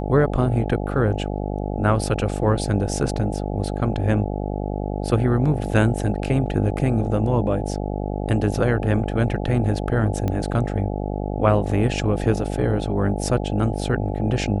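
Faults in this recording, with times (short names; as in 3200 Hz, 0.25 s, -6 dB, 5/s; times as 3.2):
buzz 50 Hz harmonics 17 -26 dBFS
10.28 pop -13 dBFS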